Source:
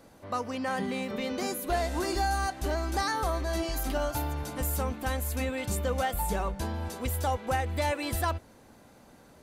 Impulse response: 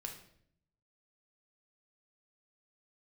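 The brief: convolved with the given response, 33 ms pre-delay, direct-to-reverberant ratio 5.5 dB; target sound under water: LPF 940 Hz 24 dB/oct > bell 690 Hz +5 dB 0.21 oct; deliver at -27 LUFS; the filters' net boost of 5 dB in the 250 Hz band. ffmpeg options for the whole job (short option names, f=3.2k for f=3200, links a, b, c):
-filter_complex "[0:a]equalizer=f=250:t=o:g=6,asplit=2[a][b];[1:a]atrim=start_sample=2205,adelay=33[c];[b][c]afir=irnorm=-1:irlink=0,volume=-3dB[d];[a][d]amix=inputs=2:normalize=0,lowpass=f=940:w=0.5412,lowpass=f=940:w=1.3066,equalizer=f=690:t=o:w=0.21:g=5,volume=2.5dB"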